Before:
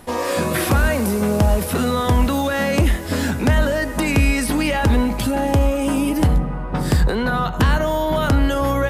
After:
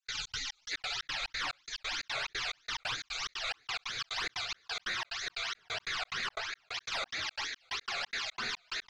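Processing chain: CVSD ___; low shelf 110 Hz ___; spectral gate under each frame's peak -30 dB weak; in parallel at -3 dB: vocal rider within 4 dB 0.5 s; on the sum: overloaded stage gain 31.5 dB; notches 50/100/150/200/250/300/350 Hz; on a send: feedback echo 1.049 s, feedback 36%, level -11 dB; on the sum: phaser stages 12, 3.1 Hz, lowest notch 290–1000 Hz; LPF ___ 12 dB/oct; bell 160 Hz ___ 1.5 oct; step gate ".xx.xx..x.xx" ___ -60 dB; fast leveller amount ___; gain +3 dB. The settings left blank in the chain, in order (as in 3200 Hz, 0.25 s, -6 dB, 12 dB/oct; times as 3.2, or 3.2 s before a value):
32 kbps, -4 dB, 4500 Hz, -2 dB, 179 bpm, 50%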